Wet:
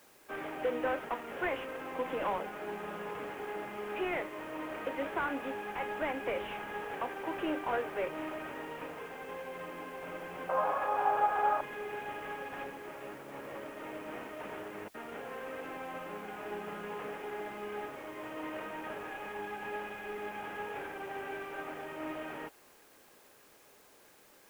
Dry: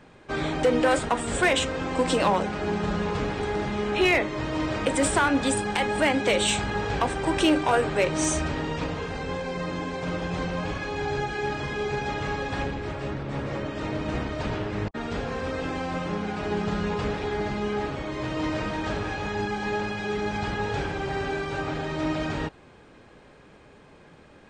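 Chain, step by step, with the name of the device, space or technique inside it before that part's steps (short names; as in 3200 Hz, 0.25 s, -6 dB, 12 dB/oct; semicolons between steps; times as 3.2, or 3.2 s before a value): army field radio (BPF 360–2800 Hz; CVSD 16 kbps; white noise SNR 24 dB); 10.49–11.61 band shelf 860 Hz +15 dB; gain -9 dB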